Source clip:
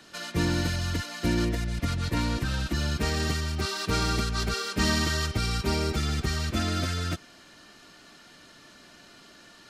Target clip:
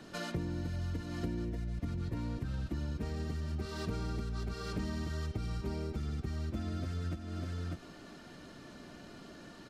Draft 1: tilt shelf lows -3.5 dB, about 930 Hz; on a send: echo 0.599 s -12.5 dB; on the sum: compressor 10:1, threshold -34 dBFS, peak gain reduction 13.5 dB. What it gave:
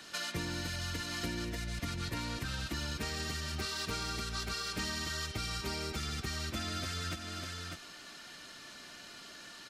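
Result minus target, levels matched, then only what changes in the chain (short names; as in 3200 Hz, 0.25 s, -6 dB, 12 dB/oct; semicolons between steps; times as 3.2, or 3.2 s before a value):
1000 Hz band +4.5 dB
change: tilt shelf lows +7 dB, about 930 Hz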